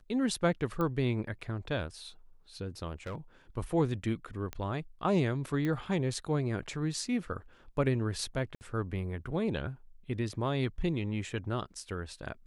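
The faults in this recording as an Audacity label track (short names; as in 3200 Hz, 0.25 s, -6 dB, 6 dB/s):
0.810000	0.810000	pop -21 dBFS
3.060000	3.160000	clipped -34 dBFS
4.530000	4.530000	pop -23 dBFS
5.650000	5.650000	pop -22 dBFS
8.550000	8.610000	gap 59 ms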